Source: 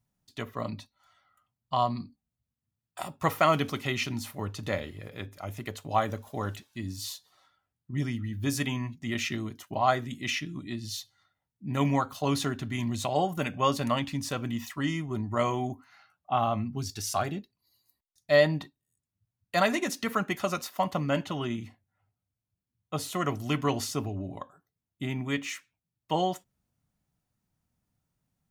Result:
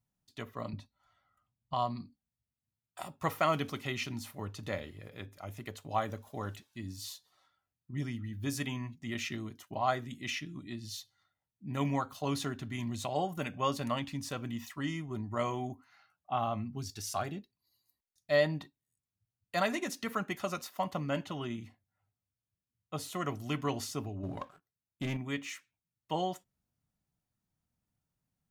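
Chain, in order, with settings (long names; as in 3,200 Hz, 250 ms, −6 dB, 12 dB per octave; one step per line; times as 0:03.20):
0:00.73–0:01.74: spectral tilt −2 dB per octave
0:24.23–0:25.17: leveller curve on the samples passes 2
level −6 dB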